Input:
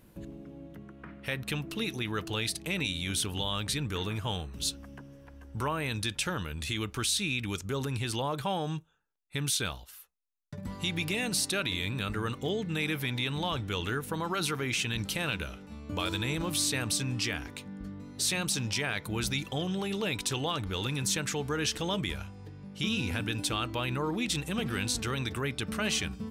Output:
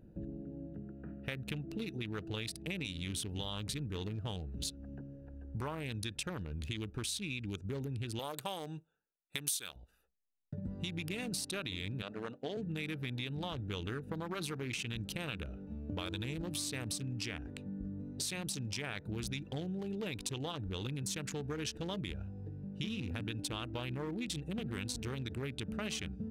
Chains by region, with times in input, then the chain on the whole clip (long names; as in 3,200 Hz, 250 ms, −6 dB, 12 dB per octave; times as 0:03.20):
0:08.19–0:09.76: RIAA equalisation recording + floating-point word with a short mantissa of 4 bits
0:12.02–0:12.57: downward expander −36 dBFS + loudspeaker in its box 280–7,500 Hz, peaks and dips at 360 Hz −7 dB, 650 Hz +7 dB, 2,100 Hz −5 dB
whole clip: adaptive Wiener filter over 41 samples; downward compressor 4 to 1, threshold −39 dBFS; level +2 dB